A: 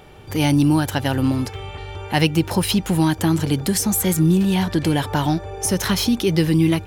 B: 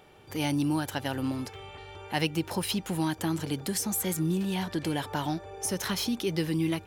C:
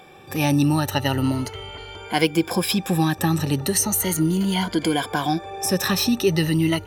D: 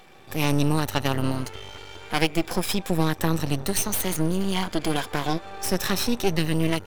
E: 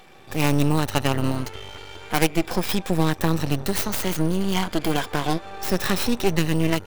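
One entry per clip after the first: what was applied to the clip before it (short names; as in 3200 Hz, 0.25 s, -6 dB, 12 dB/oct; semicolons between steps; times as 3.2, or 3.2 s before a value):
low shelf 120 Hz -11.5 dB; gain -9 dB
moving spectral ripple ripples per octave 1.8, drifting +0.37 Hz, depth 14 dB; gain +7 dB
half-wave rectifier
tracing distortion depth 0.27 ms; gain +1.5 dB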